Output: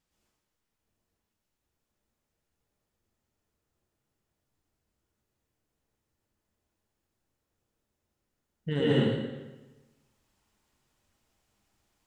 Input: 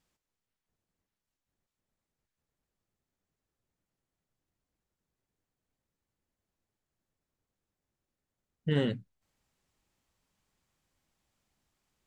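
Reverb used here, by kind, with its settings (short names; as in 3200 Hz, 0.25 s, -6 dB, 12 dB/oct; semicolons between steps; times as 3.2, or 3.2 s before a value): plate-style reverb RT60 1.2 s, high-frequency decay 0.85×, pre-delay 0.1 s, DRR -7.5 dB; gain -3 dB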